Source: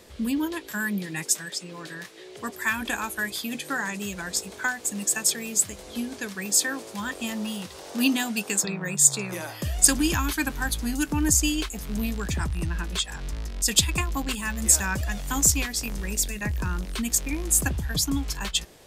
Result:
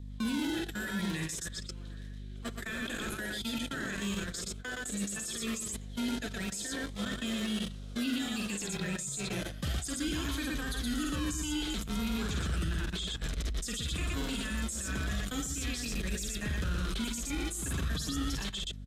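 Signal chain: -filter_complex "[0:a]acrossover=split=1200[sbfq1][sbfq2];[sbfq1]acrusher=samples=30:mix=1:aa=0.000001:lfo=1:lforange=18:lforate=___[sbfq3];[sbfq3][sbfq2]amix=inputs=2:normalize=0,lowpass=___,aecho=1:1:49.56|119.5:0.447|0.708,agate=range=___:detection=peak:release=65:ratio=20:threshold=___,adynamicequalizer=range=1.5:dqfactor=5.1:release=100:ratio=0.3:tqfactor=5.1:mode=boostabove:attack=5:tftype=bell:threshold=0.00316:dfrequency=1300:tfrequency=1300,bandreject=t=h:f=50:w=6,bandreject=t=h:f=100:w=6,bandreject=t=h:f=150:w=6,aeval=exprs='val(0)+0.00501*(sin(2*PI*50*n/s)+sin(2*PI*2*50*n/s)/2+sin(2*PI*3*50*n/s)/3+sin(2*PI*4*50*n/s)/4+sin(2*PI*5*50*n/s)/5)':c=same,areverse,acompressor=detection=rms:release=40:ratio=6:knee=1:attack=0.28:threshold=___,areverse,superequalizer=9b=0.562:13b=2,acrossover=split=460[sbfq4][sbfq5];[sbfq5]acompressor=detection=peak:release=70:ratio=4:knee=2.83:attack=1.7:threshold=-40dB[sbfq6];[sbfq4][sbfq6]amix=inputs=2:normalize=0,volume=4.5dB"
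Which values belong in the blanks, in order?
0.36, 11k, -24dB, -33dB, -33dB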